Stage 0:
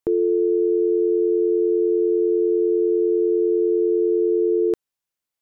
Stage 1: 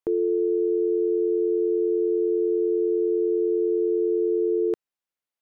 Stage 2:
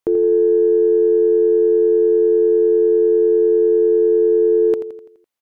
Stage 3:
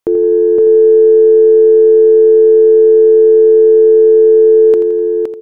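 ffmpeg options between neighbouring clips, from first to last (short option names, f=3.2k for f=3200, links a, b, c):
-af "bass=f=250:g=-5,treble=f=4k:g=-6,volume=-3dB"
-af "aecho=1:1:84|168|252|336|420|504:0.299|0.152|0.0776|0.0396|0.0202|0.0103,aeval=exprs='0.178*(cos(1*acos(clip(val(0)/0.178,-1,1)))-cos(1*PI/2))+0.00158*(cos(4*acos(clip(val(0)/0.178,-1,1)))-cos(4*PI/2))':c=same,volume=7dB"
-af "aecho=1:1:516:0.631,volume=4.5dB"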